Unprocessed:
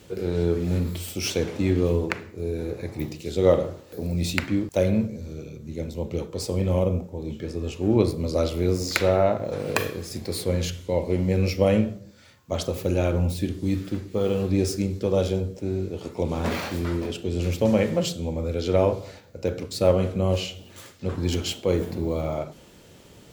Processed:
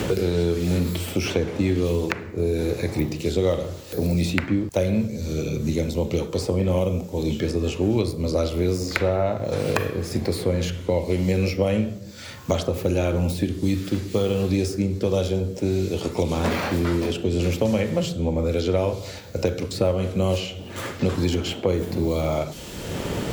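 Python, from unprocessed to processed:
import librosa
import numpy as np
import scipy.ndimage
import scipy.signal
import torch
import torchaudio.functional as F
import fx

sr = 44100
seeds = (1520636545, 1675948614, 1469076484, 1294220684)

y = fx.band_squash(x, sr, depth_pct=100)
y = y * 10.0 ** (1.0 / 20.0)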